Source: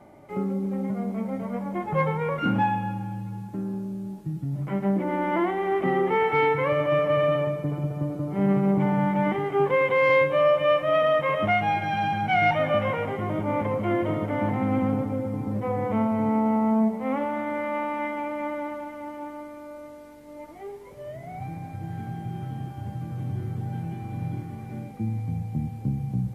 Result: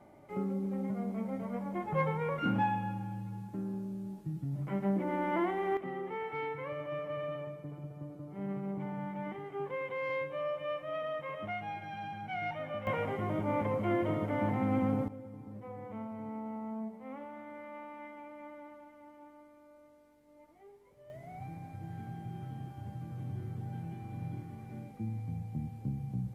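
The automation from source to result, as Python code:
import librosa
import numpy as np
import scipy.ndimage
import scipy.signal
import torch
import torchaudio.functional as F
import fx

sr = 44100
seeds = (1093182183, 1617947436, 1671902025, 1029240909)

y = fx.gain(x, sr, db=fx.steps((0.0, -7.0), (5.77, -16.0), (12.87, -6.0), (15.08, -18.0), (21.1, -9.0)))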